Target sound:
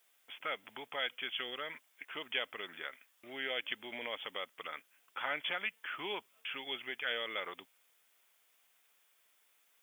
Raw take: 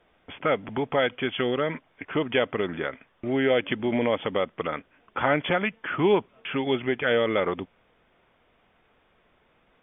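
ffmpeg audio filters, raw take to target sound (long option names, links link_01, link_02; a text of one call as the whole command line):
ffmpeg -i in.wav -af "acrusher=bits=11:mix=0:aa=0.000001,aderivative,volume=2.5dB" out.wav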